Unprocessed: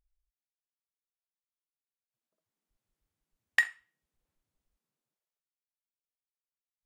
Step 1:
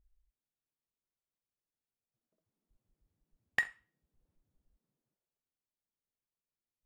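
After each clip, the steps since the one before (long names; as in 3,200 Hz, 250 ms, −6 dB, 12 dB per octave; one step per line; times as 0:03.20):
tilt shelving filter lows +8.5 dB, about 760 Hz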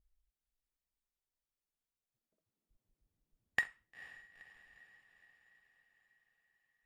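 feedback delay with all-pass diffusion 475 ms, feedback 58%, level −14 dB
harmonic and percussive parts rebalanced harmonic −4 dB
level −1.5 dB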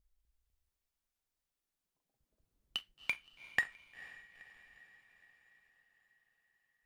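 delay with pitch and tempo change per echo 250 ms, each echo +4 semitones, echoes 2
level +1 dB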